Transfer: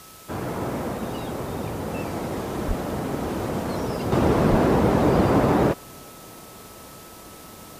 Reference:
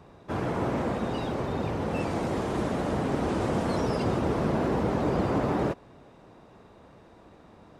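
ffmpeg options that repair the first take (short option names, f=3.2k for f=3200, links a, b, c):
-filter_complex "[0:a]bandreject=f=1.3k:w=30,asplit=3[a][b][c];[a]afade=t=out:st=2.67:d=0.02[d];[b]highpass=f=140:w=0.5412,highpass=f=140:w=1.3066,afade=t=in:st=2.67:d=0.02,afade=t=out:st=2.79:d=0.02[e];[c]afade=t=in:st=2.79:d=0.02[f];[d][e][f]amix=inputs=3:normalize=0,asplit=3[g][h][i];[g]afade=t=out:st=4.5:d=0.02[j];[h]highpass=f=140:w=0.5412,highpass=f=140:w=1.3066,afade=t=in:st=4.5:d=0.02,afade=t=out:st=4.62:d=0.02[k];[i]afade=t=in:st=4.62:d=0.02[l];[j][k][l]amix=inputs=3:normalize=0,afwtdn=0.005,asetnsamples=n=441:p=0,asendcmd='4.12 volume volume -7.5dB',volume=0dB"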